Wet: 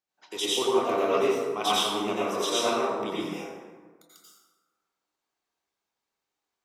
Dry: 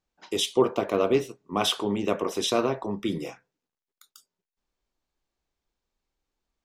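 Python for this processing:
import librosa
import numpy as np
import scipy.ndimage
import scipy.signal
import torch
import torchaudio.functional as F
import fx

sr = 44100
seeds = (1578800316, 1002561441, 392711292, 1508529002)

y = fx.highpass(x, sr, hz=650.0, slope=6)
y = fx.rev_plate(y, sr, seeds[0], rt60_s=1.5, hf_ratio=0.5, predelay_ms=75, drr_db=-8.0)
y = y * librosa.db_to_amplitude(-5.0)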